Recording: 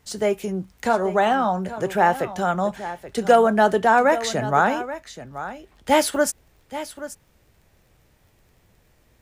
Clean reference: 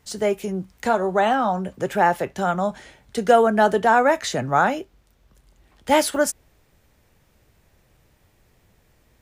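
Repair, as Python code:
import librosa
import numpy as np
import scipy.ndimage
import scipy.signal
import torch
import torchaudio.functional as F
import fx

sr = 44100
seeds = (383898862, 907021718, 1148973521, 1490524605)

y = fx.fix_declip(x, sr, threshold_db=-5.0)
y = fx.fix_declick_ar(y, sr, threshold=6.5)
y = fx.fix_echo_inverse(y, sr, delay_ms=830, level_db=-13.5)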